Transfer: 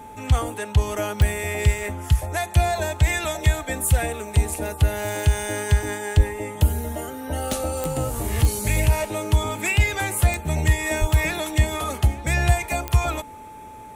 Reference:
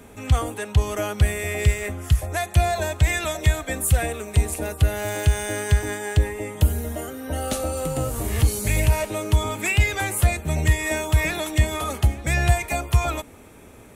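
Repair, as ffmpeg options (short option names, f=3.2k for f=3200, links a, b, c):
-filter_complex "[0:a]adeclick=t=4,bandreject=f=870:w=30,asplit=3[a][b][c];[a]afade=t=out:st=6.16:d=0.02[d];[b]highpass=f=140:w=0.5412,highpass=f=140:w=1.3066,afade=t=in:st=6.16:d=0.02,afade=t=out:st=6.28:d=0.02[e];[c]afade=t=in:st=6.28:d=0.02[f];[d][e][f]amix=inputs=3:normalize=0,asplit=3[g][h][i];[g]afade=t=out:st=11:d=0.02[j];[h]highpass=f=140:w=0.5412,highpass=f=140:w=1.3066,afade=t=in:st=11:d=0.02,afade=t=out:st=11.12:d=0.02[k];[i]afade=t=in:st=11.12:d=0.02[l];[j][k][l]amix=inputs=3:normalize=0"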